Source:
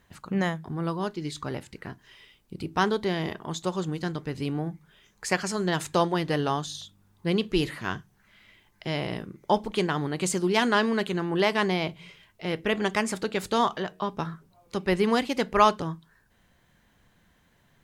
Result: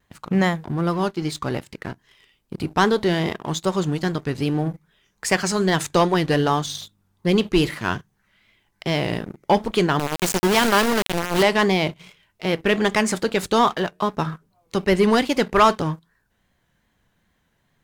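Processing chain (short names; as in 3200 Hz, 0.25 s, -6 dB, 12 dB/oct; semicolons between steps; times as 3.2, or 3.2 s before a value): 9.99–11.43 sample gate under -24 dBFS; sample leveller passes 2; vibrato 2.5 Hz 66 cents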